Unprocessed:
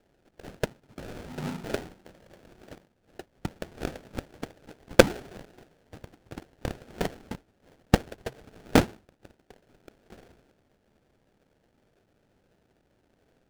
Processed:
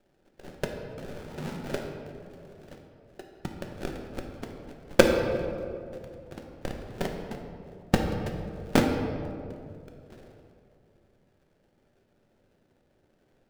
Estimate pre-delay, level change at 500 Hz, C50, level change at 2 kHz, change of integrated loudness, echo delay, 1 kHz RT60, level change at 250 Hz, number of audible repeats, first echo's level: 3 ms, +0.5 dB, 4.5 dB, -1.0 dB, -1.5 dB, no echo, 2.1 s, +0.5 dB, no echo, no echo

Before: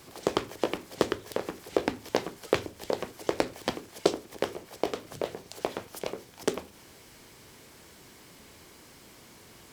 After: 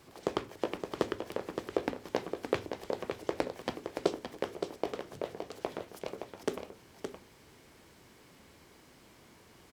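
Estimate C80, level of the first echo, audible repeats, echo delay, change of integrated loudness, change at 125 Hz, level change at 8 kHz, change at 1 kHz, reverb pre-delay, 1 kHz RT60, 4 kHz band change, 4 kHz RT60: no reverb, -7.0 dB, 1, 568 ms, -5.0 dB, -4.0 dB, -9.5 dB, -4.5 dB, no reverb, no reverb, -7.5 dB, no reverb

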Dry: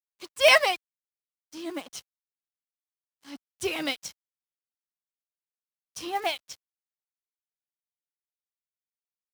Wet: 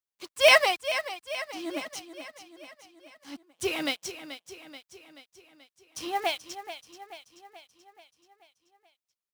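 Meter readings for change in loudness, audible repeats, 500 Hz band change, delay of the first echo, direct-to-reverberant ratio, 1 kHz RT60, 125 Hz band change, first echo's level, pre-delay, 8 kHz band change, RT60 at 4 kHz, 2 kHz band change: -1.5 dB, 5, +0.5 dB, 432 ms, no reverb, no reverb, +0.5 dB, -12.0 dB, no reverb, +0.5 dB, no reverb, +0.5 dB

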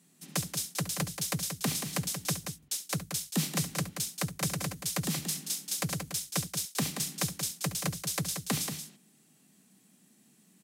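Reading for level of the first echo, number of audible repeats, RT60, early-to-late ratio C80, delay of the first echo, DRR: -13.5 dB, 2, no reverb, no reverb, 69 ms, no reverb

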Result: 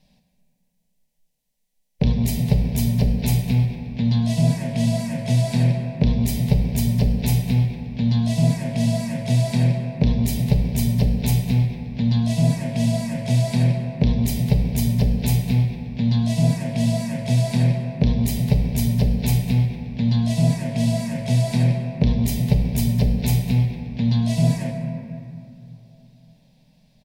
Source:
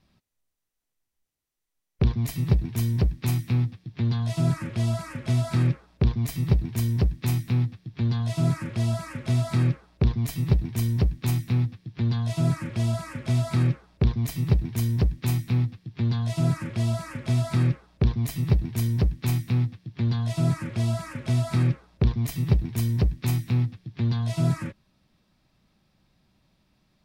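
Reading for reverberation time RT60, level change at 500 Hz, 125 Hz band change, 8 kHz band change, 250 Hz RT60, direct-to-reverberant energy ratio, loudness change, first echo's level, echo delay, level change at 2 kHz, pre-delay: 2.9 s, +6.0 dB, +4.0 dB, +7.5 dB, 3.4 s, 3.0 dB, +5.0 dB, -17.0 dB, 202 ms, +3.5 dB, 3 ms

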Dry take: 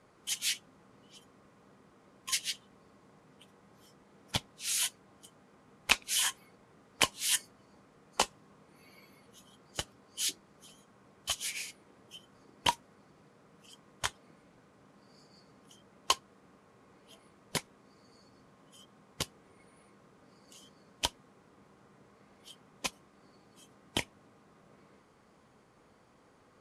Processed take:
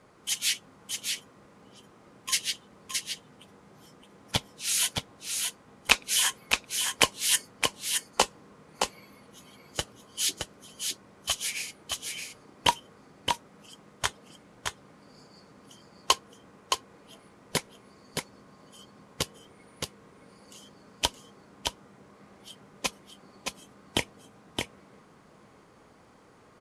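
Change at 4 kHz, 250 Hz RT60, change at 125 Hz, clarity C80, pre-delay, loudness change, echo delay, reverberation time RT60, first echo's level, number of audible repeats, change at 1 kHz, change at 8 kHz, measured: +6.5 dB, no reverb, +6.5 dB, no reverb, no reverb, +4.0 dB, 619 ms, no reverb, -4.5 dB, 1, +6.5 dB, +6.5 dB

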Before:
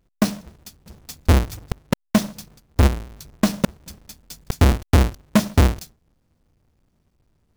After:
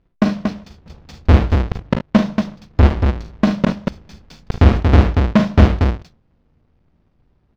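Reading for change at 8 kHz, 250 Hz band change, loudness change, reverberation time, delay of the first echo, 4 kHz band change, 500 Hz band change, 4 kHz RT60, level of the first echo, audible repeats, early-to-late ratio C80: under -10 dB, +5.5 dB, +4.5 dB, no reverb, 40 ms, -0.5 dB, +5.0 dB, no reverb, -8.5 dB, 3, no reverb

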